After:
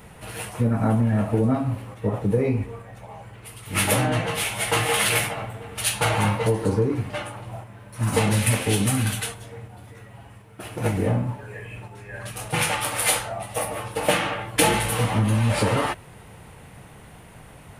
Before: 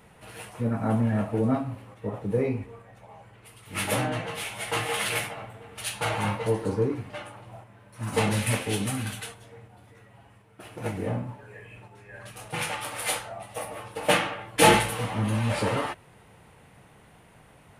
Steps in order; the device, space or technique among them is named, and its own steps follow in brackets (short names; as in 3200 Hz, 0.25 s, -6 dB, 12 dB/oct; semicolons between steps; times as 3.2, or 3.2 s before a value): ASMR close-microphone chain (low shelf 120 Hz +6.5 dB; compressor 6:1, threshold -24 dBFS, peak gain reduction 12.5 dB; high shelf 7400 Hz +5 dB); gain +7 dB